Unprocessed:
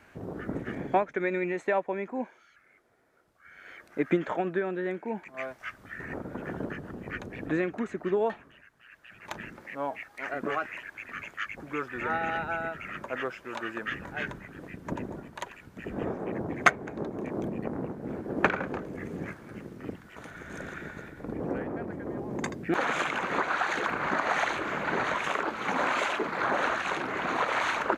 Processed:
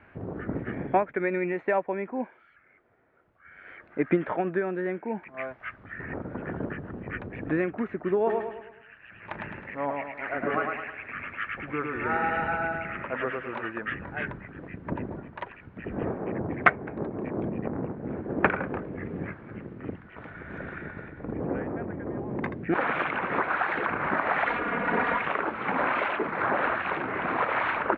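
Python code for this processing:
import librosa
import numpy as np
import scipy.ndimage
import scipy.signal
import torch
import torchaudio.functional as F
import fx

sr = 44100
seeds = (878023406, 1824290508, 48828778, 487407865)

y = fx.echo_feedback(x, sr, ms=106, feedback_pct=45, wet_db=-3.5, at=(8.26, 13.65), fade=0.02)
y = fx.comb(y, sr, ms=4.2, depth=0.75, at=(24.46, 25.22))
y = scipy.signal.sosfilt(scipy.signal.butter(4, 2600.0, 'lowpass', fs=sr, output='sos'), y)
y = fx.peak_eq(y, sr, hz=95.0, db=4.0, octaves=1.1)
y = y * librosa.db_to_amplitude(1.5)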